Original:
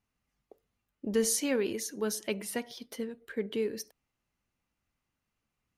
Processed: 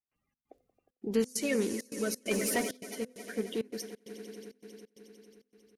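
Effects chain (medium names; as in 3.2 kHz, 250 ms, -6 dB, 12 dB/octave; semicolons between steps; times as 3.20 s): coarse spectral quantiser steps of 30 dB; on a send: echo with a slow build-up 90 ms, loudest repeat 5, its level -17.5 dB; 2.31–2.77 s: on the sum: waveshaping leveller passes 2; trance gate ".xx.xxxx" 133 bpm -24 dB; de-hum 252.3 Hz, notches 2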